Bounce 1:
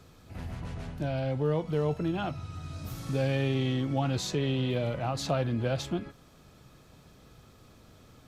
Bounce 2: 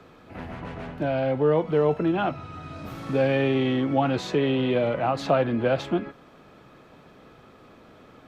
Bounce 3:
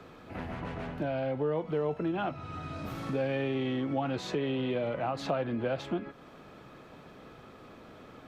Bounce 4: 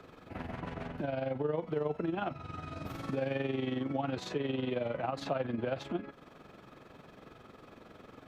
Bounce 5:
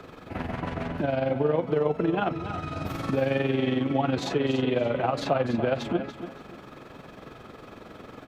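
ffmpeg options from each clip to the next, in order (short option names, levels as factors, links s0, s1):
-filter_complex "[0:a]acrossover=split=200 3000:gain=0.2 1 0.141[s0][s1][s2];[s0][s1][s2]amix=inputs=3:normalize=0,volume=2.82"
-af "acompressor=threshold=0.0178:ratio=2"
-af "tremolo=f=22:d=0.621"
-af "aecho=1:1:287|574|861:0.282|0.0733|0.0191,volume=2.66"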